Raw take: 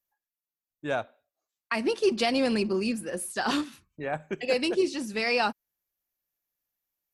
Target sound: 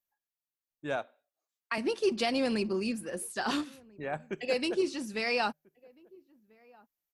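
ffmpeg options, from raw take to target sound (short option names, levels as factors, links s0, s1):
-filter_complex "[0:a]asettb=1/sr,asplit=3[s0][s1][s2];[s0]atrim=end=0.964[s3];[s1]atrim=start=0.96:end=1.78,asetpts=PTS-STARTPTS,afade=t=in:d=0.004:c=qsin,afade=t=out:st=0.816:d=0.004:c=qsin,highpass=220[s4];[s2]atrim=start=1.776[s5];[s3][s4]acrossfade=d=0.004:c1=hsin:c2=qsin[s6];[s6][s5]acrossfade=d=0.004:c1=qsin:c2=hsin,asplit=2[s7][s8];[s8]adelay=1341,volume=0.0501,highshelf=f=4000:g=-30.2[s9];[s7][s9]amix=inputs=2:normalize=0,volume=0.631"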